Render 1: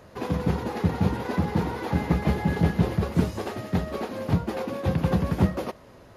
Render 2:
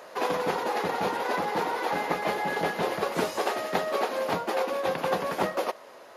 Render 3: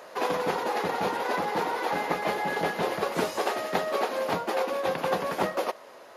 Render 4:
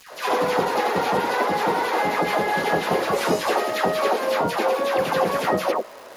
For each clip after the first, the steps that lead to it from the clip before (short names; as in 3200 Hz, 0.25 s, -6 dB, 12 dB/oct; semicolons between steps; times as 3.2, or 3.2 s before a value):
Chebyshev high-pass 600 Hz, order 2; vocal rider 0.5 s; gain +6 dB
nothing audible
dispersion lows, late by 0.122 s, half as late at 1200 Hz; crackle 270/s -42 dBFS; gain +6.5 dB